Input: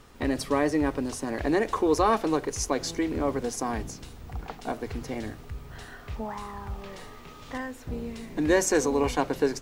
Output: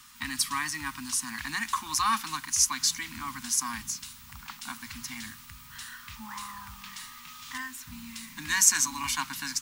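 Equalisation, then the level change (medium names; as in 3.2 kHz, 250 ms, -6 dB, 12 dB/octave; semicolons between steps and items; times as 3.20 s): Chebyshev band-stop 240–1000 Hz, order 3; tilt EQ +3.5 dB/octave; 0.0 dB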